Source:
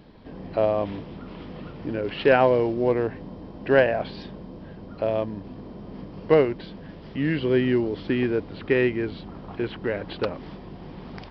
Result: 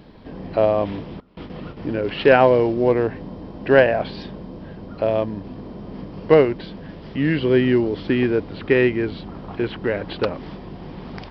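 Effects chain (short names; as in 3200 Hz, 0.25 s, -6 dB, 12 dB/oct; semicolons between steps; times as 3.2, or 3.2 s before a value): 1.2–1.77 gate with hold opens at -29 dBFS; gain +4.5 dB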